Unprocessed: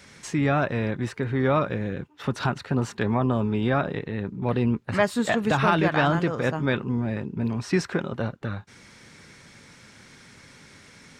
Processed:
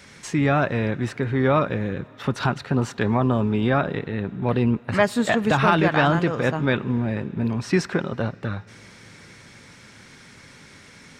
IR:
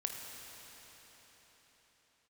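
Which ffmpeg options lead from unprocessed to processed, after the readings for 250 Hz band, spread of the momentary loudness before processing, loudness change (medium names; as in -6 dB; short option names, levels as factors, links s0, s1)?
+2.5 dB, 9 LU, +3.0 dB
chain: -filter_complex "[0:a]asplit=2[s0][s1];[1:a]atrim=start_sample=2205,lowpass=3600,highshelf=f=2600:g=11.5[s2];[s1][s2]afir=irnorm=-1:irlink=0,volume=0.0944[s3];[s0][s3]amix=inputs=2:normalize=0,volume=1.26"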